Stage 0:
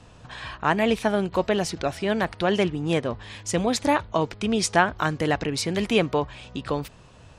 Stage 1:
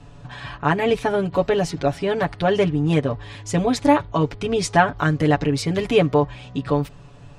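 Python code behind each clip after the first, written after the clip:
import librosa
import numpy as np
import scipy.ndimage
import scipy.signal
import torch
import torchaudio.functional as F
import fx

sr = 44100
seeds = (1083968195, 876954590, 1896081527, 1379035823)

y = fx.tilt_eq(x, sr, slope=-1.5)
y = y + 0.83 * np.pad(y, (int(7.0 * sr / 1000.0), 0))[:len(y)]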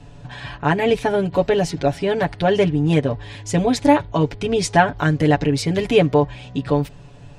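y = fx.peak_eq(x, sr, hz=1200.0, db=-8.0, octaves=0.3)
y = y * 10.0 ** (2.0 / 20.0)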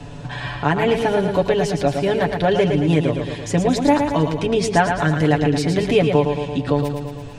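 y = fx.echo_feedback(x, sr, ms=112, feedback_pct=53, wet_db=-6.5)
y = fx.band_squash(y, sr, depth_pct=40)
y = y * 10.0 ** (-1.0 / 20.0)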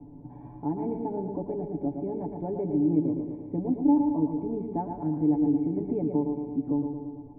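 y = fx.formant_cascade(x, sr, vowel='u')
y = fx.echo_feedback(y, sr, ms=142, feedback_pct=54, wet_db=-12)
y = y * 10.0 ** (-2.0 / 20.0)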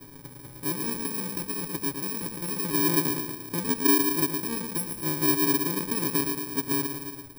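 y = fx.bit_reversed(x, sr, seeds[0], block=64)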